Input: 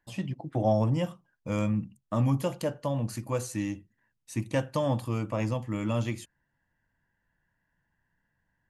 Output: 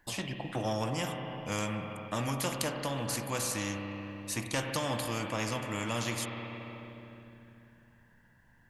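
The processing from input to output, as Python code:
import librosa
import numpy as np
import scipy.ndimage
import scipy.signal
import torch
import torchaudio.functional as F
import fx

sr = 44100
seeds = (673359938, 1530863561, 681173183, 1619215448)

y = fx.rev_spring(x, sr, rt60_s=2.7, pass_ms=(30, 50), chirp_ms=45, drr_db=8.0)
y = fx.spectral_comp(y, sr, ratio=2.0)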